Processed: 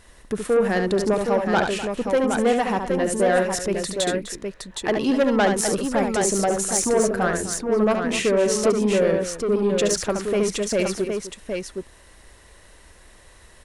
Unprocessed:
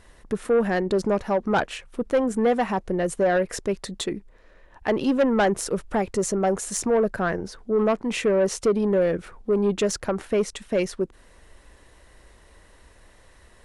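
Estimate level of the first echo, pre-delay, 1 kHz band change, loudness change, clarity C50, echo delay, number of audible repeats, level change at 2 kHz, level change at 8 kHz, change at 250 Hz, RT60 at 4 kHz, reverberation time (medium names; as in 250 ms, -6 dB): -6.0 dB, no reverb, +2.5 dB, +2.5 dB, no reverb, 71 ms, 3, +4.0 dB, +7.5 dB, +2.0 dB, no reverb, no reverb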